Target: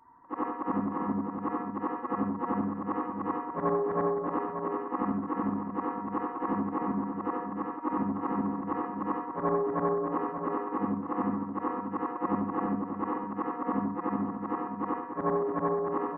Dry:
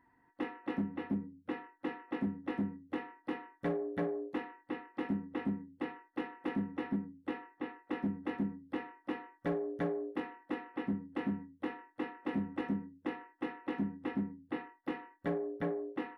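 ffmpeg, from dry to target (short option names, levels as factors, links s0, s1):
-filter_complex "[0:a]afftfilt=real='re':imag='-im':win_size=8192:overlap=0.75,lowpass=f=1100:t=q:w=7.2,asplit=2[s0][s1];[s1]adelay=583.1,volume=0.447,highshelf=f=4000:g=-13.1[s2];[s0][s2]amix=inputs=2:normalize=0,volume=2.66"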